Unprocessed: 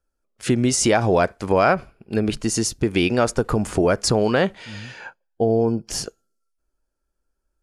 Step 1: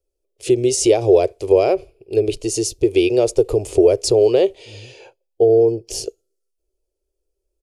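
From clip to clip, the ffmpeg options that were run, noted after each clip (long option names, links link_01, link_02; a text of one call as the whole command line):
ffmpeg -i in.wav -af "firequalizer=gain_entry='entry(110,0);entry(190,-21);entry(380,12);entry(850,-7);entry(1500,-20);entry(2500,0);entry(8800,2)':delay=0.05:min_phase=1,volume=-1dB" out.wav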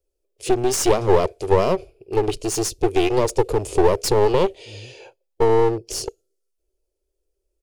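ffmpeg -i in.wav -af "aeval=exprs='clip(val(0),-1,0.0562)':channel_layout=same" out.wav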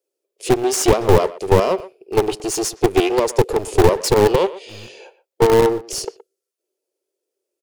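ffmpeg -i in.wav -filter_complex "[0:a]acrossover=split=220|3700[link_01][link_02][link_03];[link_01]acrusher=bits=4:dc=4:mix=0:aa=0.000001[link_04];[link_04][link_02][link_03]amix=inputs=3:normalize=0,asplit=2[link_05][link_06];[link_06]adelay=120,highpass=300,lowpass=3400,asoftclip=type=hard:threshold=-12dB,volume=-16dB[link_07];[link_05][link_07]amix=inputs=2:normalize=0,volume=2dB" out.wav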